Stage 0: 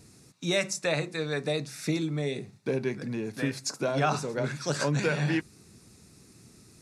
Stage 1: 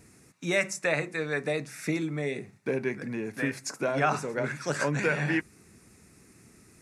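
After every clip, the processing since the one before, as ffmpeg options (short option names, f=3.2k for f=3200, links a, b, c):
-af "equalizer=f=125:t=o:w=1:g=-4,equalizer=f=2k:t=o:w=1:g=7,equalizer=f=4k:t=o:w=1:g=-9"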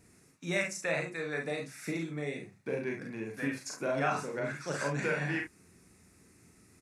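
-af "aecho=1:1:36|47|70:0.596|0.501|0.282,volume=-7dB"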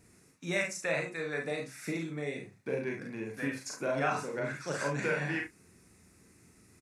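-filter_complex "[0:a]asplit=2[a][b];[b]adelay=38,volume=-14dB[c];[a][c]amix=inputs=2:normalize=0"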